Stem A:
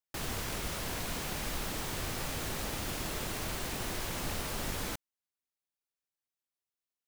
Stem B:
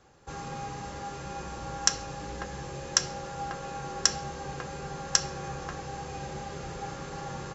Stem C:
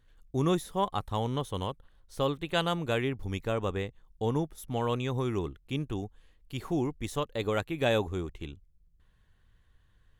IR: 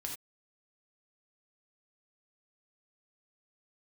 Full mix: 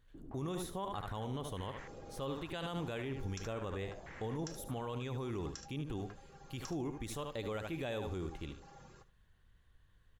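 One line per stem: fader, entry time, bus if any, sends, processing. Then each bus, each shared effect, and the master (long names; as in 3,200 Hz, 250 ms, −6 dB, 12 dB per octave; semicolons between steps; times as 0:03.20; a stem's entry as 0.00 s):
−16.0 dB, 0.00 s, no send, no echo send, low-pass on a step sequencer 3.2 Hz 300–1,900 Hz
−18.0 dB, 1.50 s, send −12.5 dB, echo send −17 dB, reverb reduction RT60 1.1 s
−3.0 dB, 0.00 s, no send, echo send −11 dB, no processing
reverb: on, pre-delay 3 ms
echo: repeating echo 74 ms, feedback 16%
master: brickwall limiter −30.5 dBFS, peak gain reduction 13.5 dB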